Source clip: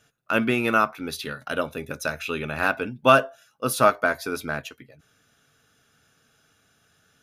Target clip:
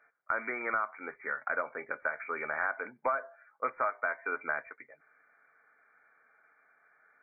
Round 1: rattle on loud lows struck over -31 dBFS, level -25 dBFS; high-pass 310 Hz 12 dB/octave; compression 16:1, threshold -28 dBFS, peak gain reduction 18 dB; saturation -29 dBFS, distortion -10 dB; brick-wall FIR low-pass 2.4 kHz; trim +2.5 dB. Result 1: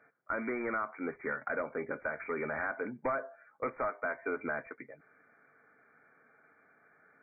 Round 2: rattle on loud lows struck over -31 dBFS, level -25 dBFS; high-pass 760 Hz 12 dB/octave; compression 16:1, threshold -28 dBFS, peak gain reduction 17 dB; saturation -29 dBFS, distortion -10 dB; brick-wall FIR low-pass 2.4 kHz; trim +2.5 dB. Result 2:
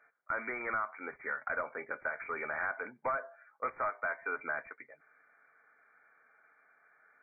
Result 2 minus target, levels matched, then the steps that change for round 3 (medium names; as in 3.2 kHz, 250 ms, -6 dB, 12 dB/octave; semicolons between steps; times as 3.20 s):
saturation: distortion +11 dB
change: saturation -20 dBFS, distortion -21 dB